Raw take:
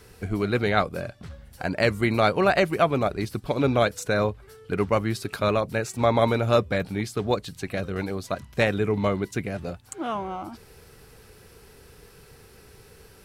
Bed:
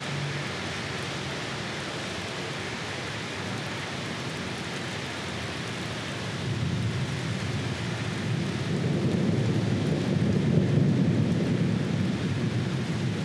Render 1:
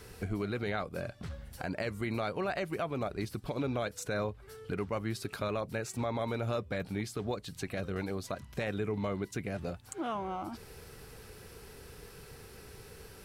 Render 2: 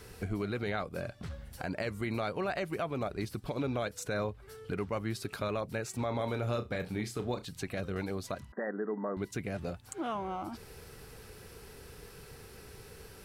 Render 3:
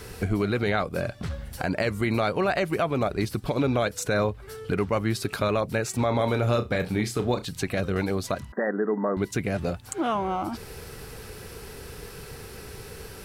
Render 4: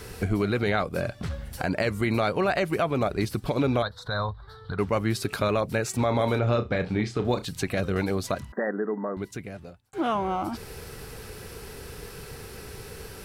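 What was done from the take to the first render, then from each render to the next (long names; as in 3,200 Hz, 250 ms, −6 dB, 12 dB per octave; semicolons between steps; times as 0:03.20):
downward compressor 2 to 1, threshold −37 dBFS, peak gain reduction 12 dB; brickwall limiter −24 dBFS, peak gain reduction 6.5 dB
0:06.07–0:07.45: flutter between parallel walls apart 5.7 metres, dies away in 0.2 s; 0:08.52–0:09.17: linear-phase brick-wall band-pass 190–2,000 Hz
level +9.5 dB
0:03.82–0:04.79: drawn EQ curve 100 Hz 0 dB, 350 Hz −16 dB, 660 Hz −5 dB, 1,000 Hz +3 dB, 1,800 Hz −5 dB, 2,600 Hz −27 dB, 3,800 Hz +5 dB, 6,500 Hz −23 dB; 0:06.39–0:07.25: high-frequency loss of the air 120 metres; 0:08.42–0:09.93: fade out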